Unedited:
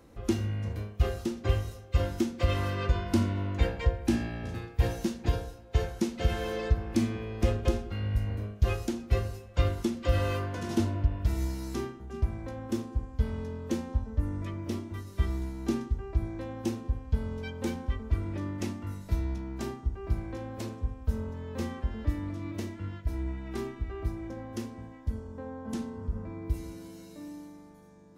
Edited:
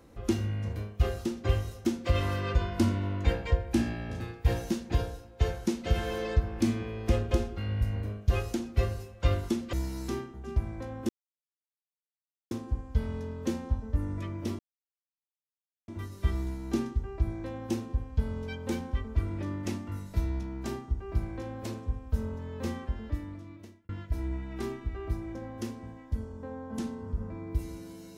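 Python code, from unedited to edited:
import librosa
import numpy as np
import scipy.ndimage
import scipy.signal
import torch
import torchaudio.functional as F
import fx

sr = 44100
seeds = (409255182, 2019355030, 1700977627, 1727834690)

y = fx.edit(x, sr, fx.cut(start_s=1.85, length_s=0.34),
    fx.cut(start_s=10.07, length_s=1.32),
    fx.insert_silence(at_s=12.75, length_s=1.42),
    fx.insert_silence(at_s=14.83, length_s=1.29),
    fx.fade_out_span(start_s=21.67, length_s=1.17), tone=tone)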